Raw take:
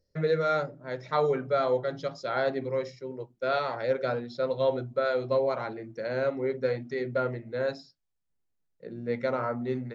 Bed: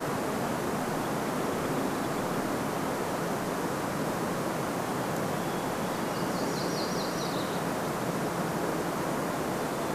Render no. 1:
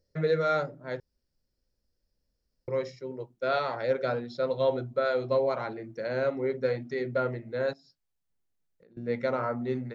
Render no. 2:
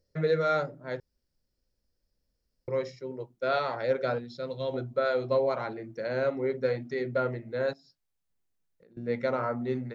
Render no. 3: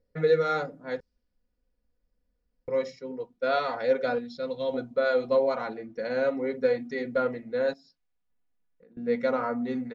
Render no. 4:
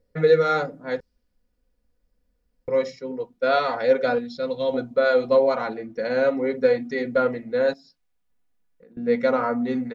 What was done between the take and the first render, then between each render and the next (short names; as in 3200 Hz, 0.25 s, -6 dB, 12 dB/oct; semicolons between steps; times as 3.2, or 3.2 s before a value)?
1–2.68 room tone; 7.73–8.97 compressor 16:1, threshold -55 dBFS
4.18–4.74 bell 830 Hz -9 dB 2.7 oct
low-pass opened by the level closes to 2400 Hz, open at -28 dBFS; comb 4.1 ms, depth 69%
gain +5.5 dB